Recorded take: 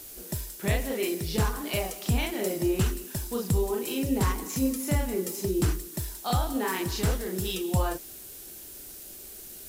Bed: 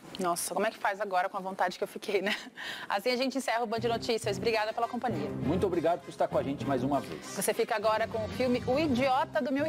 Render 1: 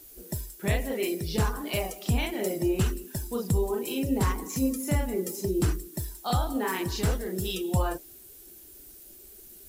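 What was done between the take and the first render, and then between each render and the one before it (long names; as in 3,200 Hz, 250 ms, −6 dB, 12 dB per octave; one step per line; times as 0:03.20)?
broadband denoise 9 dB, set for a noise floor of −44 dBFS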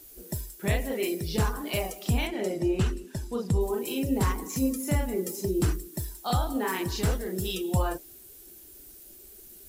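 0:02.27–0:03.61: high-frequency loss of the air 55 metres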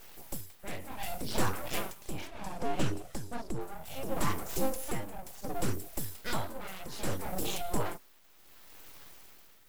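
full-wave rectification
amplitude tremolo 0.67 Hz, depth 71%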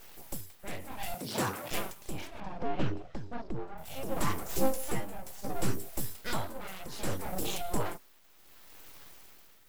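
0:01.14–0:01.71: high-pass filter 110 Hz 24 dB per octave
0:02.40–0:03.78: high-frequency loss of the air 210 metres
0:04.48–0:06.13: double-tracking delay 15 ms −5 dB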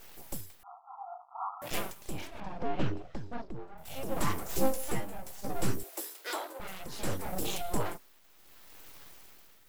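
0:00.63–0:01.62: linear-phase brick-wall band-pass 680–1,400 Hz
0:03.45–0:03.85: clip gain −5 dB
0:05.83–0:06.60: Butterworth high-pass 300 Hz 72 dB per octave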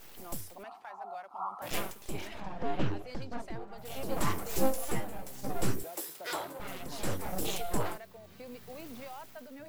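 mix in bed −18.5 dB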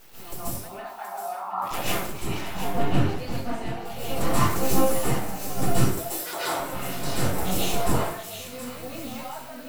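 delay with a high-pass on its return 723 ms, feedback 43%, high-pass 1,600 Hz, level −8.5 dB
dense smooth reverb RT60 0.56 s, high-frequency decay 0.8×, pre-delay 120 ms, DRR −8.5 dB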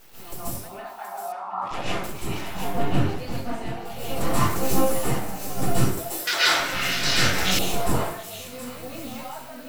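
0:01.32–0:02.04: high-frequency loss of the air 91 metres
0:06.27–0:07.59: flat-topped bell 3,000 Hz +14 dB 2.5 octaves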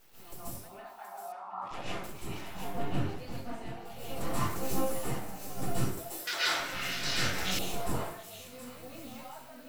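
level −10 dB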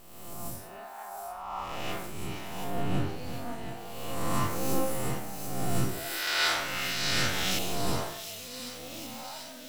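peak hold with a rise ahead of every peak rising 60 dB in 1.26 s
on a send: delay with a high-pass on its return 739 ms, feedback 74%, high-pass 3,600 Hz, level −10 dB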